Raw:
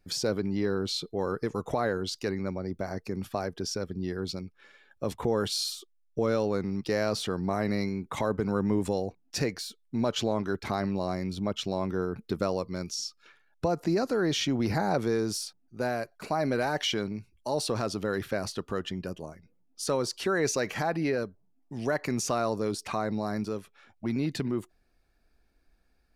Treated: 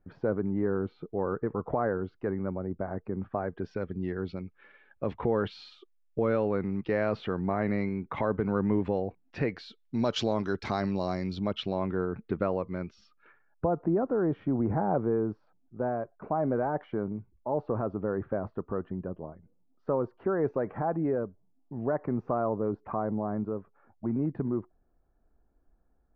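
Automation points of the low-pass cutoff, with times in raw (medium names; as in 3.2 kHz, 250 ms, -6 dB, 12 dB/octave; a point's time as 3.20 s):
low-pass 24 dB/octave
3.33 s 1.5 kHz
3.79 s 2.6 kHz
9.44 s 2.6 kHz
10.01 s 5.8 kHz
11.10 s 5.8 kHz
12.06 s 2.4 kHz
13.04 s 2.4 kHz
13.83 s 1.2 kHz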